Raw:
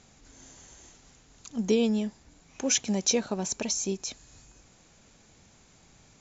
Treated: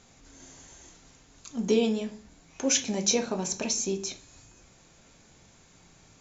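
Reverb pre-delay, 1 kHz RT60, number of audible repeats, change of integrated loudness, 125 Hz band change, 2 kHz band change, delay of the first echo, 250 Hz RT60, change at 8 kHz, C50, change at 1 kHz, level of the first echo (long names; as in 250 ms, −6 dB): 3 ms, 0.40 s, no echo audible, +0.5 dB, −1.0 dB, +1.0 dB, no echo audible, 0.65 s, can't be measured, 13.5 dB, +1.5 dB, no echo audible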